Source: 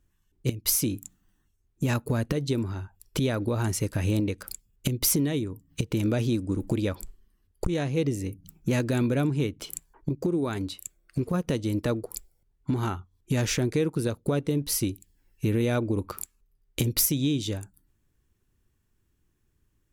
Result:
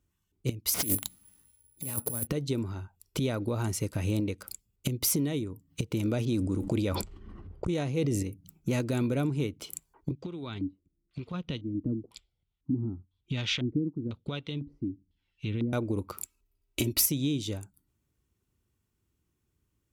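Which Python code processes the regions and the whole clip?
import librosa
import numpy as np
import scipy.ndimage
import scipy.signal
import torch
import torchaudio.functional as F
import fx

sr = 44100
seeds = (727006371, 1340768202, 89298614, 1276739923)

y = fx.chain(x, sr, fx.over_compress(threshold_db=-30.0, ratio=-0.5),
    fx.resample_bad(factor=4, down='none', up='zero_stuff'),
    fx.doppler_dist(depth_ms=0.3), at=(0.74, 2.27))
y = fx.chain(y, sr, fx.env_lowpass(base_hz=1000.0, full_db=-24.5),
    fx.sustainer(db_per_s=21.0), at=(6.25, 8.23))
y = fx.chain(y, sr, fx.harmonic_tremolo(hz=2.2, depth_pct=50, crossover_hz=510.0),
    fx.peak_eq(hz=450.0, db=-7.5, octaves=1.9),
    fx.filter_lfo_lowpass(shape='square', hz=1.0, low_hz=290.0, high_hz=3400.0, q=3.7), at=(10.11, 15.73))
y = fx.chain(y, sr, fx.peak_eq(hz=2600.0, db=5.5, octaves=0.2),
    fx.comb(ms=3.1, depth=0.82), at=(16.23, 17.06))
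y = scipy.signal.sosfilt(scipy.signal.butter(2, 53.0, 'highpass', fs=sr, output='sos'), y)
y = fx.notch(y, sr, hz=1700.0, q=6.9)
y = y * librosa.db_to_amplitude(-3.5)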